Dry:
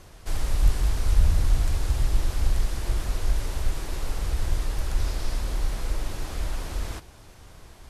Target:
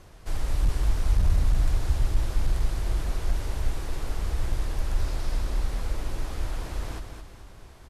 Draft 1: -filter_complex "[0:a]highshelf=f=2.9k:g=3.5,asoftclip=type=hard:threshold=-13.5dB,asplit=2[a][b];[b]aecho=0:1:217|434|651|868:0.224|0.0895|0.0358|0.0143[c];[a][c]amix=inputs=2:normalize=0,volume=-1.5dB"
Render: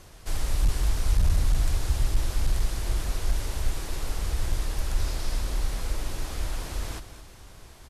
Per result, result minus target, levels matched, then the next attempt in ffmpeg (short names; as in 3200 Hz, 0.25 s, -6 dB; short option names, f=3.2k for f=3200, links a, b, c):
8000 Hz band +6.5 dB; echo-to-direct -6 dB
-filter_complex "[0:a]highshelf=f=2.9k:g=-4.5,asoftclip=type=hard:threshold=-13.5dB,asplit=2[a][b];[b]aecho=0:1:217|434|651|868:0.224|0.0895|0.0358|0.0143[c];[a][c]amix=inputs=2:normalize=0,volume=-1.5dB"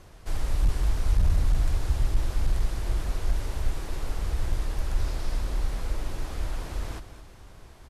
echo-to-direct -6 dB
-filter_complex "[0:a]highshelf=f=2.9k:g=-4.5,asoftclip=type=hard:threshold=-13.5dB,asplit=2[a][b];[b]aecho=0:1:217|434|651|868|1085:0.447|0.179|0.0715|0.0286|0.0114[c];[a][c]amix=inputs=2:normalize=0,volume=-1.5dB"